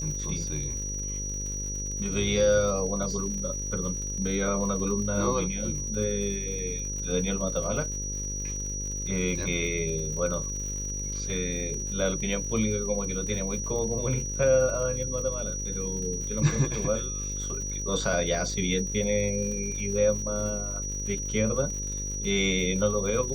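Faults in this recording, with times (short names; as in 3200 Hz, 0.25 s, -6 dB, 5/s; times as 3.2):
buzz 50 Hz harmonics 11 -35 dBFS
crackle 150/s -37 dBFS
tone 5800 Hz -33 dBFS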